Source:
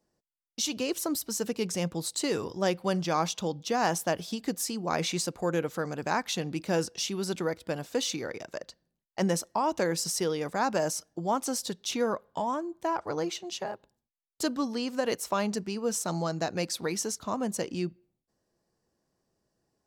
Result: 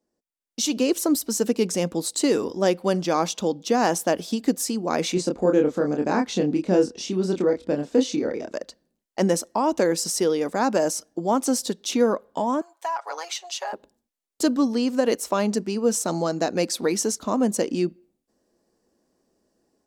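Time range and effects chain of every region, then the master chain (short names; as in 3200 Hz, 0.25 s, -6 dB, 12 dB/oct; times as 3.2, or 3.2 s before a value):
5.14–8.54 LPF 7200 Hz + tilt shelf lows +4.5 dB, about 690 Hz + doubler 27 ms -4 dB
12.61–13.73 HPF 730 Hz 24 dB/oct + compressor 3:1, threshold -33 dBFS + comb 7.2 ms, depth 70%
whole clip: graphic EQ 125/250/500/8000 Hz -10/+9/+4/+3 dB; AGC gain up to 10.5 dB; gain -6 dB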